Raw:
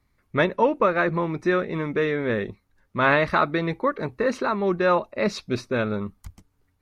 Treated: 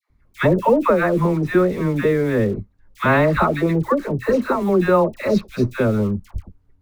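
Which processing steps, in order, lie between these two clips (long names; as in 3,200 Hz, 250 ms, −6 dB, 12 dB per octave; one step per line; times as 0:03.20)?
spectral tilt −2.5 dB per octave
in parallel at −9 dB: bit reduction 6 bits
on the sum: all-pass dispersion lows, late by 97 ms, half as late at 910 Hz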